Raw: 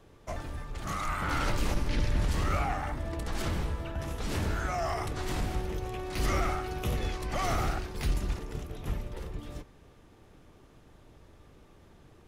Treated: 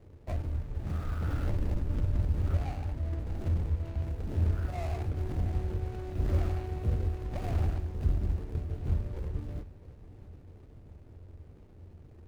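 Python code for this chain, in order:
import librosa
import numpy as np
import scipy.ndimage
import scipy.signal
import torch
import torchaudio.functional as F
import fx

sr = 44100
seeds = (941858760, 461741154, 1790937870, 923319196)

y = scipy.signal.medfilt(x, 41)
y = fx.peak_eq(y, sr, hz=84.0, db=12.0, octaves=0.55)
y = fx.rider(y, sr, range_db=4, speed_s=2.0)
y = fx.echo_feedback(y, sr, ms=666, feedback_pct=57, wet_db=-18.5)
y = F.gain(torch.from_numpy(y), -3.0).numpy()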